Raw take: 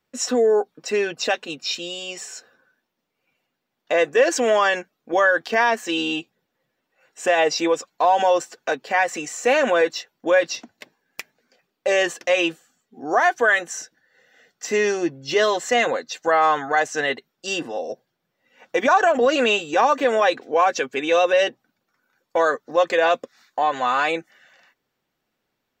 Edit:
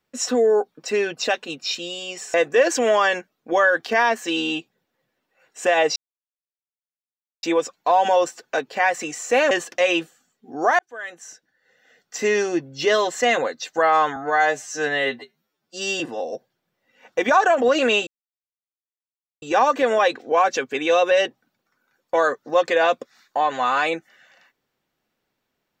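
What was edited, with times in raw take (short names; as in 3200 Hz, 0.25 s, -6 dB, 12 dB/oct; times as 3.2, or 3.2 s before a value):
2.34–3.95 cut
7.57 insert silence 1.47 s
9.65–12 cut
13.28–14.67 fade in
16.65–17.57 stretch 2×
19.64 insert silence 1.35 s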